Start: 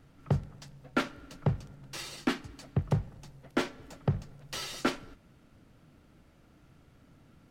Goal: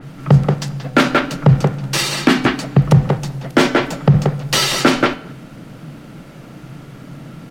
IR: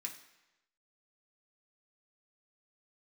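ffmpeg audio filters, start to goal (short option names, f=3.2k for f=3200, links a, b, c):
-filter_complex "[0:a]lowshelf=f=110:t=q:w=3:g=-7,bandreject=f=252.8:t=h:w=4,bandreject=f=505.6:t=h:w=4,bandreject=f=758.4:t=h:w=4,bandreject=f=1.0112k:t=h:w=4,bandreject=f=1.264k:t=h:w=4,bandreject=f=1.5168k:t=h:w=4,bandreject=f=1.7696k:t=h:w=4,bandreject=f=2.0224k:t=h:w=4,bandreject=f=2.2752k:t=h:w=4,bandreject=f=2.528k:t=h:w=4,bandreject=f=2.7808k:t=h:w=4,bandreject=f=3.0336k:t=h:w=4,bandreject=f=3.2864k:t=h:w=4,bandreject=f=3.5392k:t=h:w=4,bandreject=f=3.792k:t=h:w=4,bandreject=f=4.0448k:t=h:w=4,bandreject=f=4.2976k:t=h:w=4,bandreject=f=4.5504k:t=h:w=4,bandreject=f=4.8032k:t=h:w=4,bandreject=f=5.056k:t=h:w=4,bandreject=f=5.3088k:t=h:w=4,bandreject=f=5.5616k:t=h:w=4,bandreject=f=5.8144k:t=h:w=4,bandreject=f=6.0672k:t=h:w=4,bandreject=f=6.32k:t=h:w=4,bandreject=f=6.5728k:t=h:w=4,bandreject=f=6.8256k:t=h:w=4,bandreject=f=7.0784k:t=h:w=4,bandreject=f=7.3312k:t=h:w=4,asplit=2[a][b];[b]adelay=180,highpass=300,lowpass=3.4k,asoftclip=type=hard:threshold=-23dB,volume=-6dB[c];[a][c]amix=inputs=2:normalize=0,alimiter=level_in=23.5dB:limit=-1dB:release=50:level=0:latency=1,adynamicequalizer=threshold=0.0316:dfrequency=3900:dqfactor=0.7:tfrequency=3900:tqfactor=0.7:attack=5:release=100:ratio=0.375:range=1.5:mode=cutabove:tftype=highshelf,volume=-1dB"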